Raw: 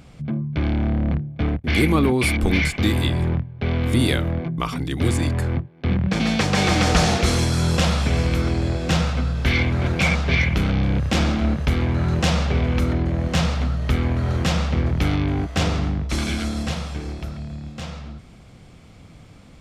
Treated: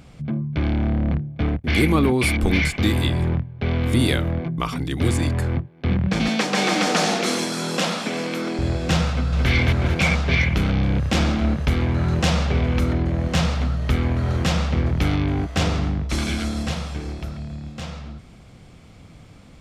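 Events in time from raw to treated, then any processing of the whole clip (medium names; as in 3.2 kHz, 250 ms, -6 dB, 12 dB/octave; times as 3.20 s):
6.28–8.59 s: steep high-pass 190 Hz
9.10–9.50 s: echo throw 220 ms, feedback 45%, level -2.5 dB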